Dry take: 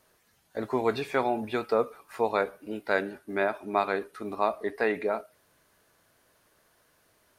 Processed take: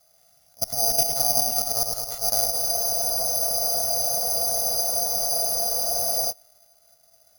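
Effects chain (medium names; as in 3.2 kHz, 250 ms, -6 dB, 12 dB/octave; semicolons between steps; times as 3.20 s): comb filter that takes the minimum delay 1.5 ms; low-pass 5.1 kHz 24 dB/octave; peaking EQ 700 Hz +14.5 dB 0.3 oct; harmonic-percussive split harmonic +9 dB; treble shelf 2.3 kHz -4 dB; level held to a coarse grid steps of 23 dB; slow attack 154 ms; compression, threshold -28 dBFS, peak gain reduction 8 dB; on a send: delay with an opening low-pass 106 ms, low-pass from 750 Hz, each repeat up 1 oct, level -3 dB; on the sum: careless resampling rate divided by 8×, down none, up zero stuff; spectral freeze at 2.56 s, 3.75 s; trim -1 dB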